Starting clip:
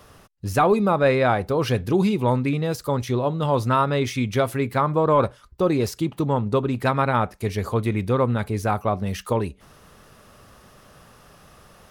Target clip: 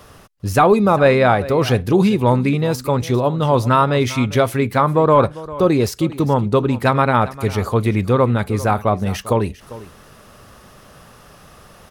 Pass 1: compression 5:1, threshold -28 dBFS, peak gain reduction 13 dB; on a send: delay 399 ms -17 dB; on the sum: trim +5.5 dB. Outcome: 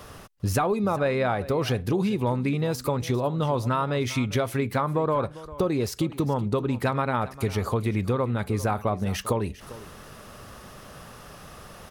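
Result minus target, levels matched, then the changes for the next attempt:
compression: peak gain reduction +13 dB
remove: compression 5:1, threshold -28 dBFS, peak gain reduction 13 dB

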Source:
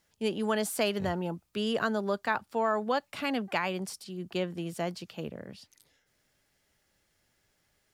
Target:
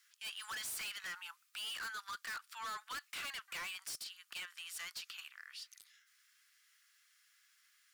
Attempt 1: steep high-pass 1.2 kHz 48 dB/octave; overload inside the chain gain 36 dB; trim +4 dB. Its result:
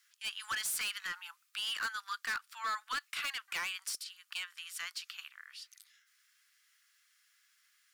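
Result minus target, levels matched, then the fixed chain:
overload inside the chain: distortion -4 dB
steep high-pass 1.2 kHz 48 dB/octave; overload inside the chain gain 45 dB; trim +4 dB

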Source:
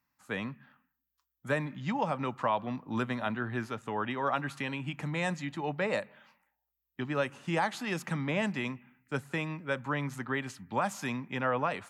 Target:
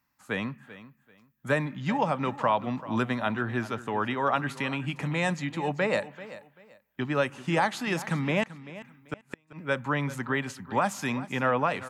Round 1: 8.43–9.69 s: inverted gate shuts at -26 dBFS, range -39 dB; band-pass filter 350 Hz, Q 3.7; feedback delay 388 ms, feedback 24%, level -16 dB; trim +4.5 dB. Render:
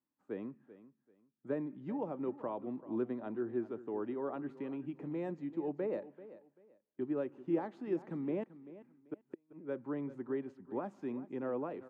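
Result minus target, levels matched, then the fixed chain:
250 Hz band +4.0 dB
8.43–9.69 s: inverted gate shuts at -26 dBFS, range -39 dB; feedback delay 388 ms, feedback 24%, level -16 dB; trim +4.5 dB

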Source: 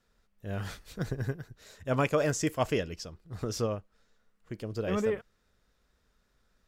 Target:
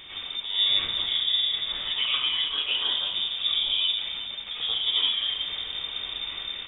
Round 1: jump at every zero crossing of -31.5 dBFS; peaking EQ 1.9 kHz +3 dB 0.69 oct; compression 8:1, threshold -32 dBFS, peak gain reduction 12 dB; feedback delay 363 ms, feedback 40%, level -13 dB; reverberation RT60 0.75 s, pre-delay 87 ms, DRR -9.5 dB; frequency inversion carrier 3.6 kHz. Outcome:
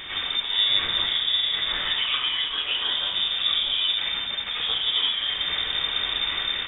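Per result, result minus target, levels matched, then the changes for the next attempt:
2 kHz band +4.0 dB; jump at every zero crossing: distortion +6 dB
change: peaking EQ 1.9 kHz -4.5 dB 0.69 oct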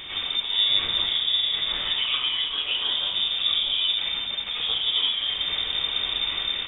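jump at every zero crossing: distortion +6 dB
change: jump at every zero crossing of -38.5 dBFS

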